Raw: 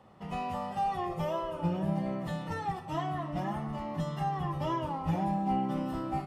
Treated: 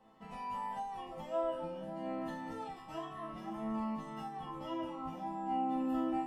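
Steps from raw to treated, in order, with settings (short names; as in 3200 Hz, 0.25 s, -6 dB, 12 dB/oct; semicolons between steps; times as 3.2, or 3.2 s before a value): compressor, threshold -33 dBFS, peak gain reduction 8 dB; resonator bank A3 minor, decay 0.5 s; gain +15.5 dB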